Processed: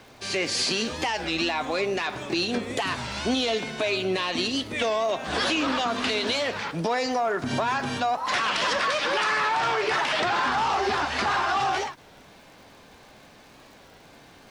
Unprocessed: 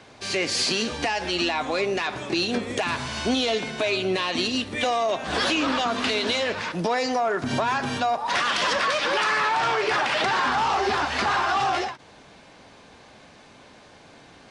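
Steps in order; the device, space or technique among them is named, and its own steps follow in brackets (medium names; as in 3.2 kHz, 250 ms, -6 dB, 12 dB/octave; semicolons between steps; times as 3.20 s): warped LP (warped record 33 1/3 rpm, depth 160 cents; crackle; pink noise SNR 36 dB); trim -1.5 dB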